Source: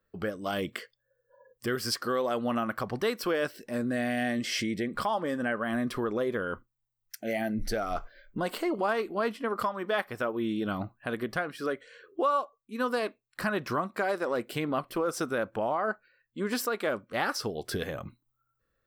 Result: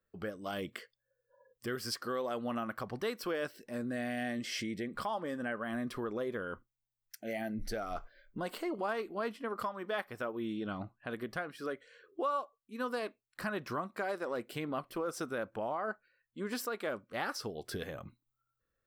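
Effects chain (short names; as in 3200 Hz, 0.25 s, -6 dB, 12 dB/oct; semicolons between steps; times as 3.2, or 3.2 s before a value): 10.56–11.11 LPF 6300 Hz 12 dB/oct; gain -7 dB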